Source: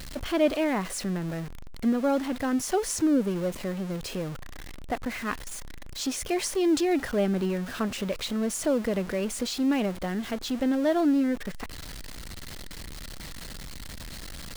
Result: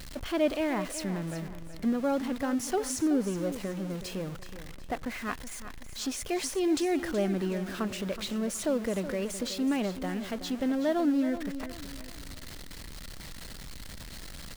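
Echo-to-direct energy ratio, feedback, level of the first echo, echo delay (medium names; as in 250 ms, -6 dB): -11.5 dB, 37%, -12.0 dB, 373 ms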